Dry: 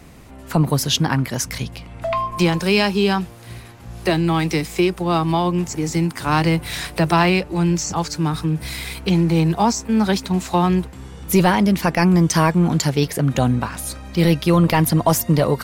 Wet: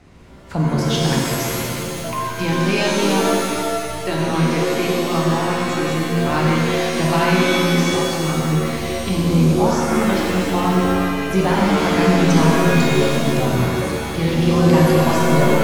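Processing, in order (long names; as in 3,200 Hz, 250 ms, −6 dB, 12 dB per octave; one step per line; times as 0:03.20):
high-frequency loss of the air 66 metres
reverb with rising layers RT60 2.1 s, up +7 semitones, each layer −2 dB, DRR −3 dB
level −6 dB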